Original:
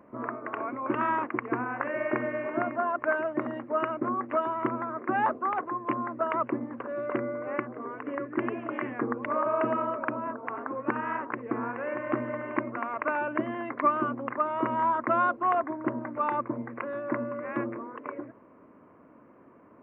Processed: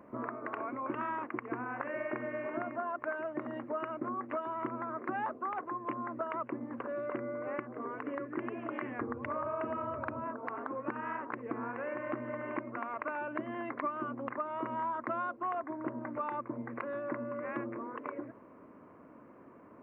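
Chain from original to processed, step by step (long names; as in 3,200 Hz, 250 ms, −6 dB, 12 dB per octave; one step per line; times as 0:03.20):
0:08.98–0:10.23: noise in a band 80–140 Hz −47 dBFS
downward compressor 3 to 1, threshold −36 dBFS, peak gain reduction 13 dB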